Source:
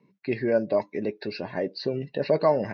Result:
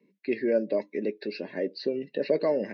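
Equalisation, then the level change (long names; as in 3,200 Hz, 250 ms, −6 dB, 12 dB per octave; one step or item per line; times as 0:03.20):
high-pass filter 210 Hz 24 dB per octave
flat-topped bell 990 Hz −11.5 dB 1.3 octaves
high-shelf EQ 4,800 Hz −7.5 dB
0.0 dB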